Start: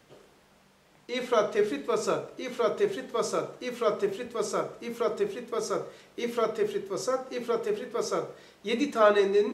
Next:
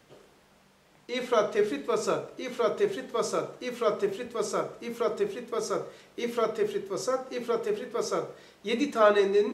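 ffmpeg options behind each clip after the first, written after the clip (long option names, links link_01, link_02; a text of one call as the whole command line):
ffmpeg -i in.wav -af anull out.wav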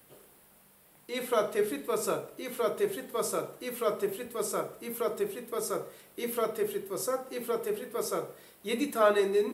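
ffmpeg -i in.wav -af "aexciter=amount=10.9:drive=3.6:freq=9000,volume=-3dB" out.wav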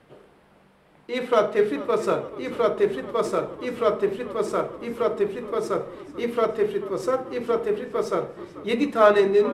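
ffmpeg -i in.wav -filter_complex "[0:a]asplit=6[link_01][link_02][link_03][link_04][link_05][link_06];[link_02]adelay=437,afreqshift=-57,volume=-16.5dB[link_07];[link_03]adelay=874,afreqshift=-114,volume=-21.2dB[link_08];[link_04]adelay=1311,afreqshift=-171,volume=-26dB[link_09];[link_05]adelay=1748,afreqshift=-228,volume=-30.7dB[link_10];[link_06]adelay=2185,afreqshift=-285,volume=-35.4dB[link_11];[link_01][link_07][link_08][link_09][link_10][link_11]amix=inputs=6:normalize=0,adynamicsmooth=sensitivity=3:basefreq=3000,volume=8dB" out.wav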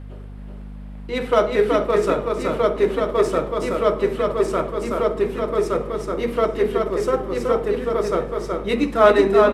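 ffmpeg -i in.wav -filter_complex "[0:a]aeval=exprs='val(0)+0.0141*(sin(2*PI*50*n/s)+sin(2*PI*2*50*n/s)/2+sin(2*PI*3*50*n/s)/3+sin(2*PI*4*50*n/s)/4+sin(2*PI*5*50*n/s)/5)':channel_layout=same,asplit=2[link_01][link_02];[link_02]aecho=0:1:375:0.668[link_03];[link_01][link_03]amix=inputs=2:normalize=0,volume=2.5dB" out.wav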